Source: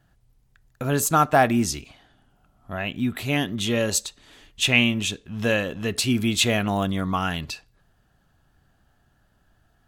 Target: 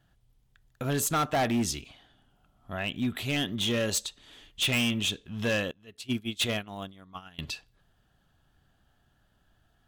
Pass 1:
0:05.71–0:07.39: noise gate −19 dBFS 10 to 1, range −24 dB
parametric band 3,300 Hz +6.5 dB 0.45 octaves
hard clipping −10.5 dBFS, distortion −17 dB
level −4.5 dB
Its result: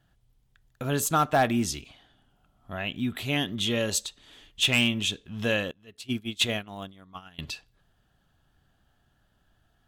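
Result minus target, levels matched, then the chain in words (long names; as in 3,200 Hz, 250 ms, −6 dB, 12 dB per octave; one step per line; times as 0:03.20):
hard clipping: distortion −9 dB
0:05.71–0:07.39: noise gate −19 dBFS 10 to 1, range −24 dB
parametric band 3,300 Hz +6.5 dB 0.45 octaves
hard clipping −18 dBFS, distortion −8 dB
level −4.5 dB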